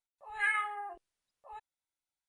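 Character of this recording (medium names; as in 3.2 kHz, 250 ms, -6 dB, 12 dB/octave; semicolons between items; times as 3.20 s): noise floor -96 dBFS; spectral tilt +2.0 dB/octave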